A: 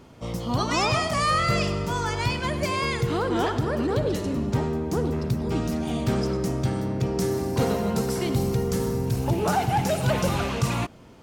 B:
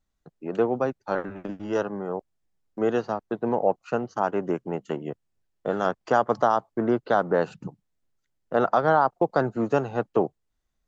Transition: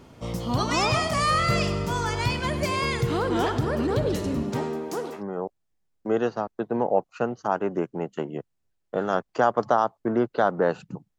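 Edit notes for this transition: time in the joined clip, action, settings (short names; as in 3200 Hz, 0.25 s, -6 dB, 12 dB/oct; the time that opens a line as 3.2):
A
4.42–5.23 HPF 150 Hz -> 700 Hz
5.19 switch to B from 1.91 s, crossfade 0.08 s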